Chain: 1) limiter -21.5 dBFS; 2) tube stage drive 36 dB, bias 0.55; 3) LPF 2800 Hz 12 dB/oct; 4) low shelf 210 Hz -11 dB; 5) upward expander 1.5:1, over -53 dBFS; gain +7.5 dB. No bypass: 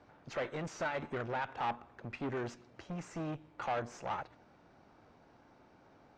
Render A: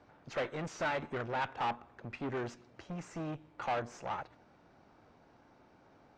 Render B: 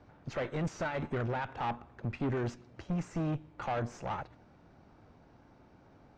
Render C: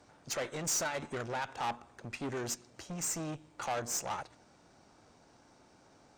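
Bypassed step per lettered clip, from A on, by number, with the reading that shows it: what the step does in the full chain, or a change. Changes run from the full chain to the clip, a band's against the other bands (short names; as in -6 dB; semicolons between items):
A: 1, momentary loudness spread change +2 LU; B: 4, 125 Hz band +9.0 dB; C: 3, 8 kHz band +21.5 dB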